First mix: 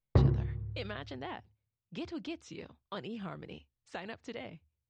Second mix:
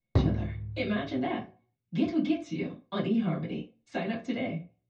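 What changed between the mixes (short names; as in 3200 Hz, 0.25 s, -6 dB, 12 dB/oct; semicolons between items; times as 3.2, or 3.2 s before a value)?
background: remove LPF 2400 Hz; reverb: on, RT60 0.35 s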